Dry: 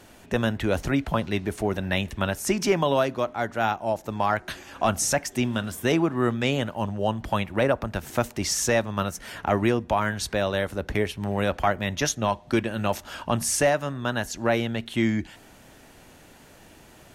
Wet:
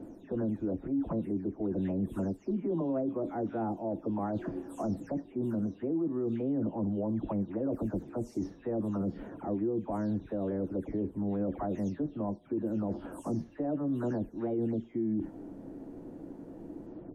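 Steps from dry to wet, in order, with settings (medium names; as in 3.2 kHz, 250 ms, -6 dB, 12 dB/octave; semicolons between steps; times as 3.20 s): delay that grows with frequency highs early, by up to 283 ms; FFT filter 140 Hz 0 dB, 280 Hz +14 dB, 2.6 kHz -25 dB; reverse; compression 5:1, threshold -30 dBFS, peak gain reduction 19.5 dB; reverse; peak limiter -26 dBFS, peak gain reduction 7 dB; trim +1.5 dB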